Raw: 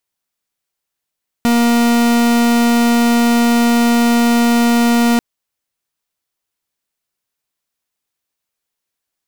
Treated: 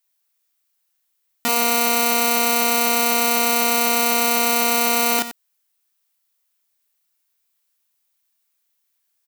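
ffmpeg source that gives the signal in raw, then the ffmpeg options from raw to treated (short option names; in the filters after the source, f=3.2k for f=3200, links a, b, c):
-f lavfi -i "aevalsrc='0.251*(2*lt(mod(236*t,1),0.43)-1)':d=3.74:s=44100"
-af "highpass=f=1.1k:p=1,highshelf=f=12k:g=10.5,aecho=1:1:32.07|122.4:0.891|0.251"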